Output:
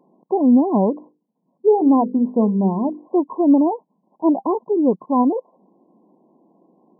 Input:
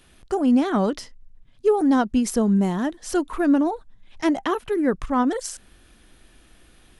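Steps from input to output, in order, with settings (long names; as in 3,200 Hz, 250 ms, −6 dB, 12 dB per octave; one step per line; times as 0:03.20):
0:00.90–0:03.08: mains-hum notches 50/100/150/200/250/300/350/400/450/500 Hz
linear-phase brick-wall band-pass 160–1,100 Hz
level +4.5 dB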